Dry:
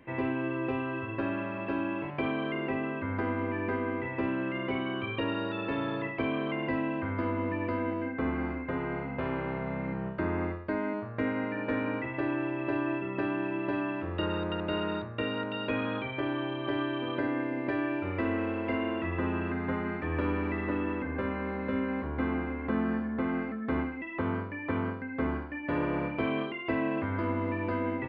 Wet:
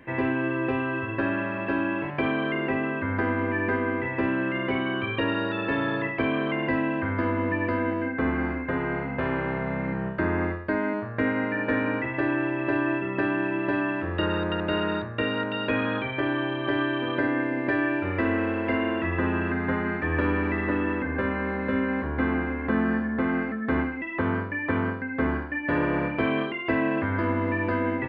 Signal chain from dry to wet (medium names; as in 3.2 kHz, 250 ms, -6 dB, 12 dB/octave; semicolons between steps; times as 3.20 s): peaking EQ 1.7 kHz +8 dB 0.25 oct; trim +5 dB